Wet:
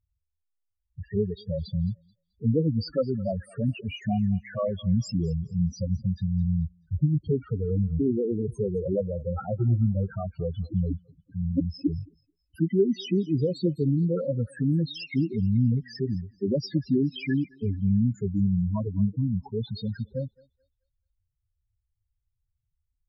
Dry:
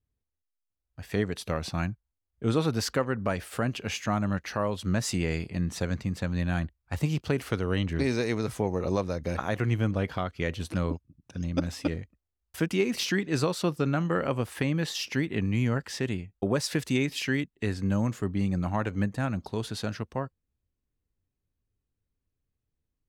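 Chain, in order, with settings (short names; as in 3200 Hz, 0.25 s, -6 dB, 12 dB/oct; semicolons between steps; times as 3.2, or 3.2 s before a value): loudest bins only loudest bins 4; thinning echo 0.216 s, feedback 35%, high-pass 860 Hz, level -19 dB; gain +5 dB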